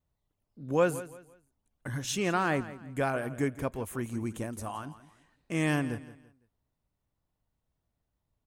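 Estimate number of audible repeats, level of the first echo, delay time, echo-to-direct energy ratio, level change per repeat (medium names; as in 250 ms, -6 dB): 2, -15.5 dB, 169 ms, -15.0 dB, -10.0 dB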